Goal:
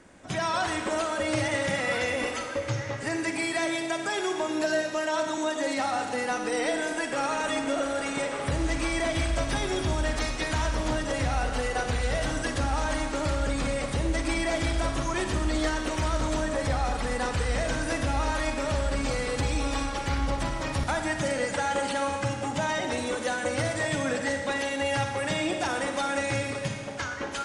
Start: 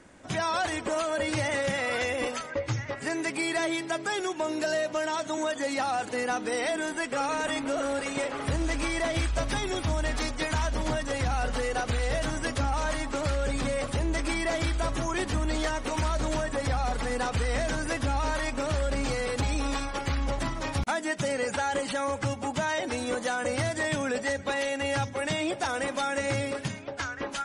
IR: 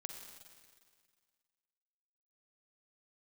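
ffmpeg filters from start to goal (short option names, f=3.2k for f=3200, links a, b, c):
-filter_complex "[1:a]atrim=start_sample=2205[a];[0:a][a]afir=irnorm=-1:irlink=0,volume=4dB"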